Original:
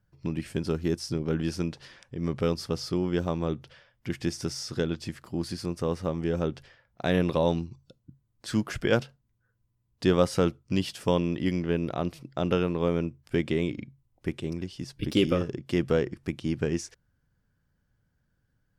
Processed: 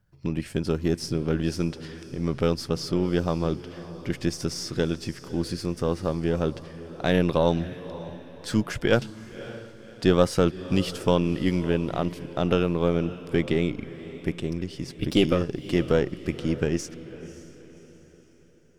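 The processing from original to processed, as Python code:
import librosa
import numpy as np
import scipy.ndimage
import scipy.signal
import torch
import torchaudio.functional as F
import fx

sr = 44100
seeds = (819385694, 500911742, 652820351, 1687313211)

y = np.where(x < 0.0, 10.0 ** (-3.0 / 20.0) * x, x)
y = fx.echo_diffused(y, sr, ms=562, feedback_pct=42, wet_db=-15.0)
y = F.gain(torch.from_numpy(y), 4.0).numpy()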